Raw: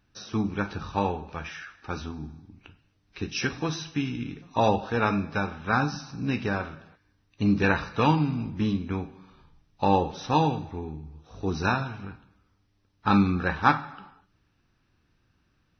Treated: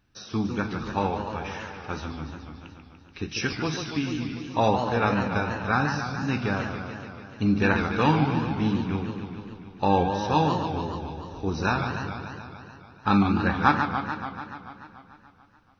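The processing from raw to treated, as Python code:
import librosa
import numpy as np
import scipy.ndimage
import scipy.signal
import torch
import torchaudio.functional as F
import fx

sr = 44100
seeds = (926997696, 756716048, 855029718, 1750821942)

y = fx.dmg_tone(x, sr, hz=1600.0, level_db=-44.0, at=(9.88, 10.5), fade=0.02)
y = fx.echo_warbled(y, sr, ms=145, feedback_pct=72, rate_hz=2.8, cents=208, wet_db=-7)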